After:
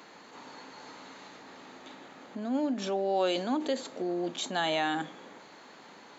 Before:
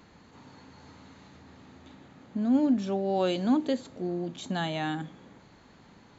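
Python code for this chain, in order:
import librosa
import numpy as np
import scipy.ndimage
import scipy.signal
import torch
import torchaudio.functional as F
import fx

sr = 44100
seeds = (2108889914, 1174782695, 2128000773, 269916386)

p1 = fx.over_compress(x, sr, threshold_db=-33.0, ratio=-0.5)
p2 = x + (p1 * librosa.db_to_amplitude(-3.0))
y = scipy.signal.sosfilt(scipy.signal.butter(2, 390.0, 'highpass', fs=sr, output='sos'), p2)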